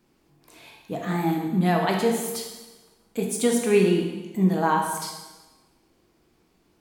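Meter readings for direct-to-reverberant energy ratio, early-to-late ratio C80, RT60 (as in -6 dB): 0.5 dB, 6.0 dB, 1.2 s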